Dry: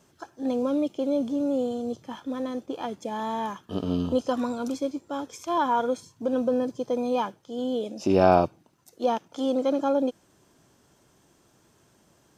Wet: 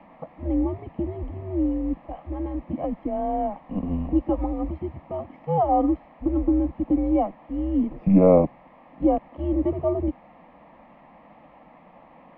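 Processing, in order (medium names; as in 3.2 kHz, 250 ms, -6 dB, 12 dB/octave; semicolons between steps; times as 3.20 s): peaking EQ 1.1 kHz -9 dB 0.61 oct; in parallel at -5.5 dB: word length cut 6-bit, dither triangular; on the sum: mistuned SSB -190 Hz 290–2000 Hz; static phaser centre 400 Hz, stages 6; trim +6 dB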